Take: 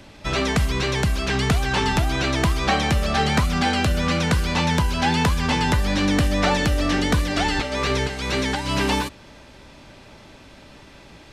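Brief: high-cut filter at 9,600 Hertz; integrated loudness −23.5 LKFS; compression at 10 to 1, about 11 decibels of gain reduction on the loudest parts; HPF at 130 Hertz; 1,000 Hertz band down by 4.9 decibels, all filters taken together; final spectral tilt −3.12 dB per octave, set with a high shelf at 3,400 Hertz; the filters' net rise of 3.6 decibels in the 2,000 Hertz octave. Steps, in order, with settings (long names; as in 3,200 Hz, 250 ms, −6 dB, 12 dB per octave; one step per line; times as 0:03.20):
high-pass filter 130 Hz
low-pass filter 9,600 Hz
parametric band 1,000 Hz −8 dB
parametric band 2,000 Hz +4.5 dB
high-shelf EQ 3,400 Hz +7 dB
downward compressor 10 to 1, threshold −27 dBFS
level +6 dB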